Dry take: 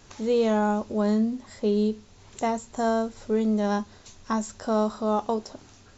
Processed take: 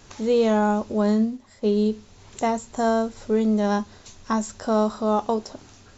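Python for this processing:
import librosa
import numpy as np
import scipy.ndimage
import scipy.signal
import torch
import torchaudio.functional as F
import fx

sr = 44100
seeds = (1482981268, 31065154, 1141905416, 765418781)

y = fx.upward_expand(x, sr, threshold_db=-39.0, expansion=1.5, at=(1.12, 1.86))
y = y * librosa.db_to_amplitude(3.0)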